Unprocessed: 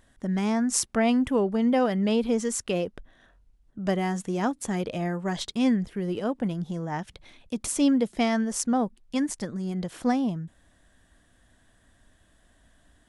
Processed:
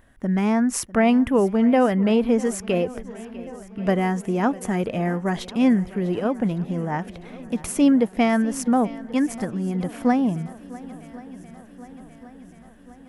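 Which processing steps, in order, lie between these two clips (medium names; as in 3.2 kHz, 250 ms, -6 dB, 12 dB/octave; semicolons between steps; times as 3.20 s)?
high-order bell 5.5 kHz -8.5 dB; shuffle delay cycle 1082 ms, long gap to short 1.5:1, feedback 57%, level -19 dB; trim +5 dB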